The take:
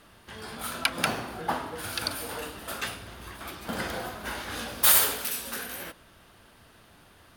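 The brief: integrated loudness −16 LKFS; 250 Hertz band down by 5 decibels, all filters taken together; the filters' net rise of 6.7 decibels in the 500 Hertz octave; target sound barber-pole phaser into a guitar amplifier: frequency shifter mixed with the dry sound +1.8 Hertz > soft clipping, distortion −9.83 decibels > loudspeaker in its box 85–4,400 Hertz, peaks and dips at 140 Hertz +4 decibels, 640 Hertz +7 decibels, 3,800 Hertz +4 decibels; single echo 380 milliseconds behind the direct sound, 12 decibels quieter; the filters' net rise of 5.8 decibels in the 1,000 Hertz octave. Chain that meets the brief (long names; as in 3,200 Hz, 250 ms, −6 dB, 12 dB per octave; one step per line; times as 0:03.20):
parametric band 250 Hz −8.5 dB
parametric band 500 Hz +3.5 dB
parametric band 1,000 Hz +5.5 dB
single-tap delay 380 ms −12 dB
frequency shifter mixed with the dry sound +1.8 Hz
soft clipping −22 dBFS
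loudspeaker in its box 85–4,400 Hz, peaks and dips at 140 Hz +4 dB, 640 Hz +7 dB, 3,800 Hz +4 dB
level +18.5 dB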